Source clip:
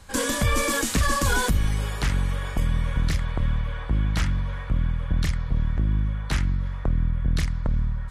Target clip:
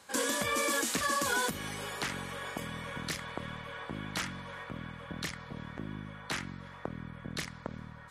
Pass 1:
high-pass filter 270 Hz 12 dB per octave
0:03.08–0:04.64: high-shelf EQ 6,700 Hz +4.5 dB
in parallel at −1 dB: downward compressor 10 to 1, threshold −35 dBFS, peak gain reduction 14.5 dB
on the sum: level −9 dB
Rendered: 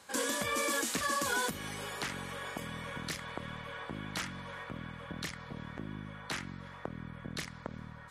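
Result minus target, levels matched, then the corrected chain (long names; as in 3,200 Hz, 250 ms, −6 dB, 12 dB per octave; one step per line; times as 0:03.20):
downward compressor: peak gain reduction +7.5 dB
high-pass filter 270 Hz 12 dB per octave
0:03.08–0:04.64: high-shelf EQ 6,700 Hz +4.5 dB
in parallel at −1 dB: downward compressor 10 to 1, threshold −26.5 dBFS, peak gain reduction 6.5 dB
on the sum: level −9 dB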